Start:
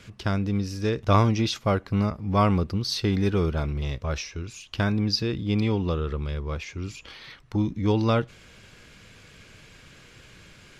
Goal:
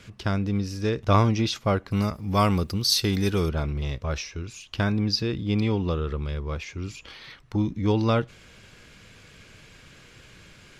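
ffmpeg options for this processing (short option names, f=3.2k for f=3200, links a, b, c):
-filter_complex "[0:a]asettb=1/sr,asplit=3[a][b][c];[a]atrim=end=1.914[d];[b]atrim=start=1.91:end=3.49,asetpts=PTS-STARTPTS,afade=t=in:d=0.004:c=qsin,afade=t=out:st=1.576:d=0.004:c=qsin,aemphasis=mode=production:type=75fm[e];[c]atrim=start=3.486[f];[d][e]acrossfade=d=0.004:c1=hsin:c2=qsin[g];[g][f]acrossfade=d=0.004:c1=qsin:c2=hsin"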